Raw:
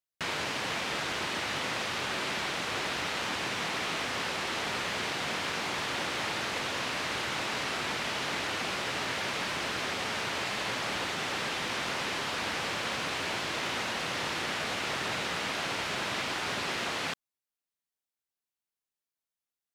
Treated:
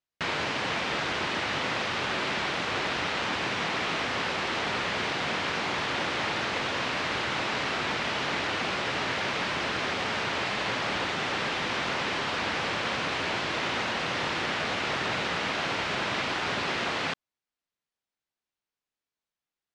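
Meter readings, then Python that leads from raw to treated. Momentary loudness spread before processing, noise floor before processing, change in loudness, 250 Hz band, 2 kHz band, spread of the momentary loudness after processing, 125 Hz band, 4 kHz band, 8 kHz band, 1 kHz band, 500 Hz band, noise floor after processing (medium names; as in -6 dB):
0 LU, under -85 dBFS, +3.0 dB, +4.5 dB, +3.5 dB, 0 LU, +4.5 dB, +2.0 dB, -3.0 dB, +4.0 dB, +4.0 dB, under -85 dBFS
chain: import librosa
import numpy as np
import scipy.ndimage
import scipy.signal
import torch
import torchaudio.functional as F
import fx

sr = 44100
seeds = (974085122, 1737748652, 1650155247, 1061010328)

y = fx.air_absorb(x, sr, metres=99.0)
y = F.gain(torch.from_numpy(y), 4.5).numpy()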